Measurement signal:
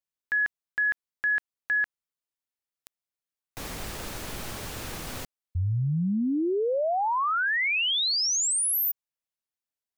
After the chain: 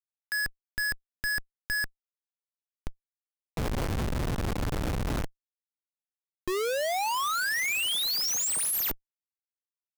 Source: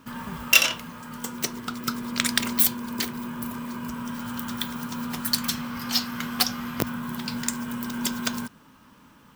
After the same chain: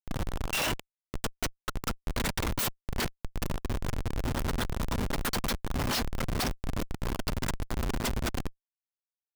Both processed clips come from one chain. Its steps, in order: high-pass 500 Hz 12 dB/octave; in parallel at +1.5 dB: compression 12:1, threshold -37 dBFS; on the sum: Schmitt trigger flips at -25.5 dBFS

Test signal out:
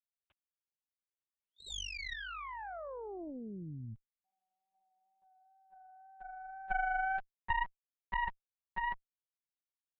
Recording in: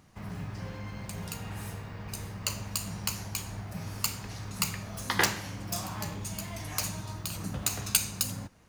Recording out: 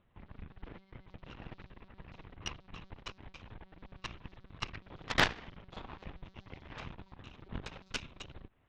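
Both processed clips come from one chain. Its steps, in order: monotone LPC vocoder at 8 kHz 190 Hz; Chebyshev shaper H 3 -11 dB, 4 -17 dB, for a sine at -13 dBFS; wow and flutter 22 cents; trim +6 dB

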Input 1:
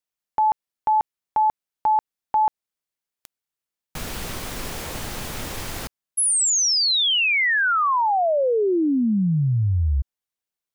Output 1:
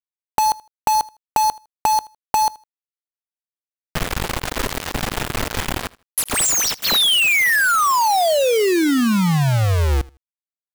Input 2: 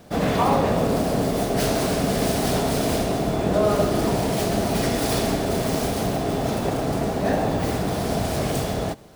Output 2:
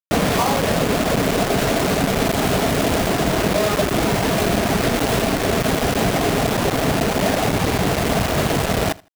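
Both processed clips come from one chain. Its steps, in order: median filter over 9 samples; reverb removal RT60 0.65 s; compression 6:1, threshold -25 dBFS; bit crusher 5-bit; feedback delay 79 ms, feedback 21%, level -22.5 dB; trim +9 dB

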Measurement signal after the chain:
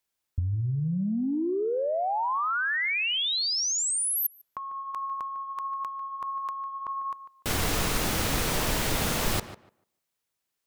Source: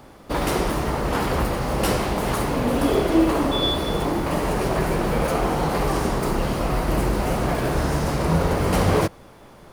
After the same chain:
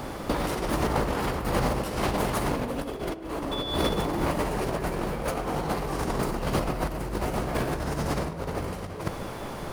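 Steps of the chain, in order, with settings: compressor with a negative ratio -28 dBFS, ratio -0.5; on a send: tape echo 149 ms, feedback 21%, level -11.5 dB, low-pass 2.2 kHz; on the sum: trim +2 dB

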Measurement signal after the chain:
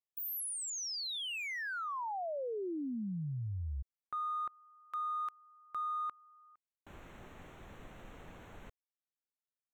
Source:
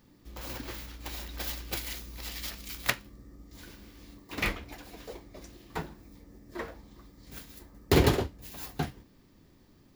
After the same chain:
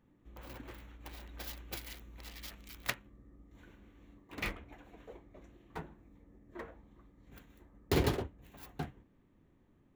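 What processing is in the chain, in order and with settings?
local Wiener filter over 9 samples; trim -7.5 dB

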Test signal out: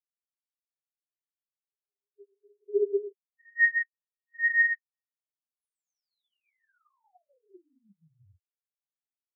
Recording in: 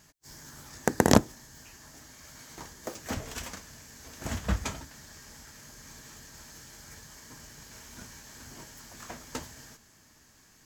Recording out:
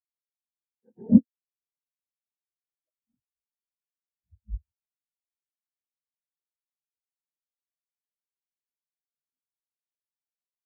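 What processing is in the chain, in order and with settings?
phase randomisation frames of 100 ms; spectral contrast expander 4:1; trim +2.5 dB

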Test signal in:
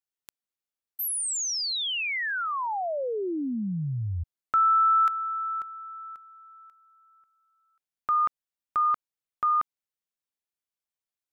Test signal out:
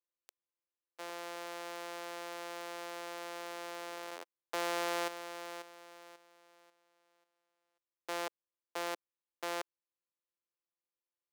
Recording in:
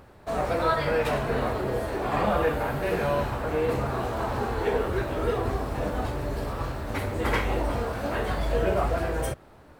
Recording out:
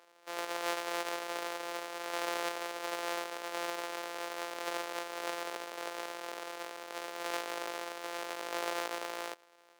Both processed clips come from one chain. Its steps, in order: sorted samples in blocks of 256 samples; high-pass 440 Hz 24 dB/octave; treble shelf 9.5 kHz -6 dB; trim -6.5 dB

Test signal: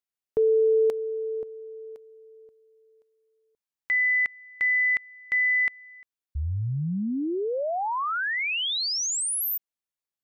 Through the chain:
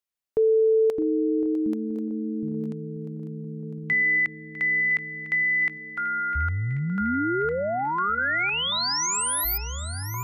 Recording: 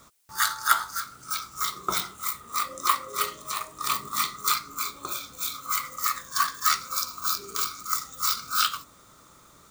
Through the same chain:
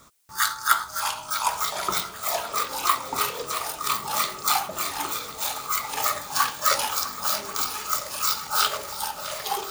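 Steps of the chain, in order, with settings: shuffle delay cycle 1087 ms, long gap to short 1.5:1, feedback 52%, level -14 dB; ever faster or slower copies 461 ms, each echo -6 st, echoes 3, each echo -6 dB; trim +1 dB

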